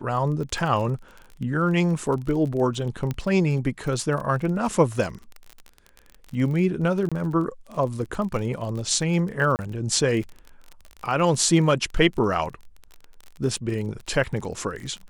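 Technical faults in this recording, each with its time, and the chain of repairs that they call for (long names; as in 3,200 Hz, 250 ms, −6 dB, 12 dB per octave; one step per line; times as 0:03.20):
surface crackle 32 per second −31 dBFS
0:03.11: click −15 dBFS
0:07.09–0:07.12: drop-out 26 ms
0:09.56–0:09.59: drop-out 29 ms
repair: click removal
repair the gap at 0:07.09, 26 ms
repair the gap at 0:09.56, 29 ms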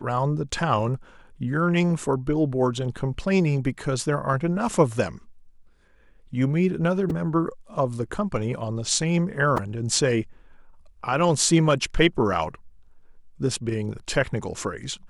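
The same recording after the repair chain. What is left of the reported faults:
none of them is left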